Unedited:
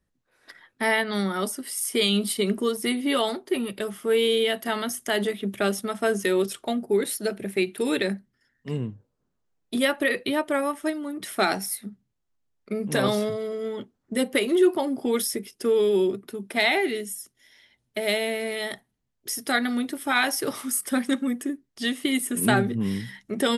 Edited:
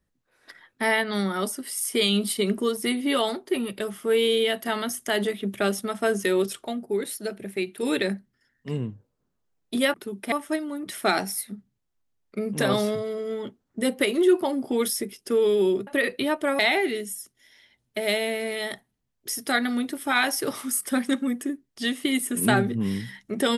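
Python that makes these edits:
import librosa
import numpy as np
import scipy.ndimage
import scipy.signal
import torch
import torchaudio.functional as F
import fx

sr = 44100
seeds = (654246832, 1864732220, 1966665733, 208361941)

y = fx.edit(x, sr, fx.clip_gain(start_s=6.67, length_s=1.16, db=-4.0),
    fx.swap(start_s=9.94, length_s=0.72, other_s=16.21, other_length_s=0.38), tone=tone)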